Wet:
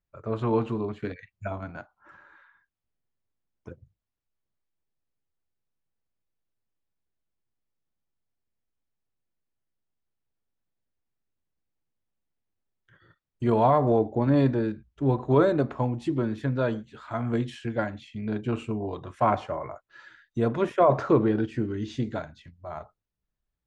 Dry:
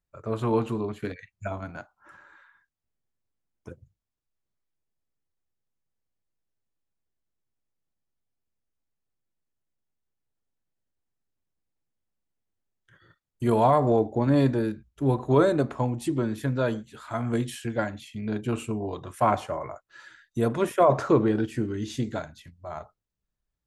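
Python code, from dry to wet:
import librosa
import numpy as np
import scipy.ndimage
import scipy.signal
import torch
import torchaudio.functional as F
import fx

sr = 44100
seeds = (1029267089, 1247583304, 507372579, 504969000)

y = fx.air_absorb(x, sr, metres=130.0)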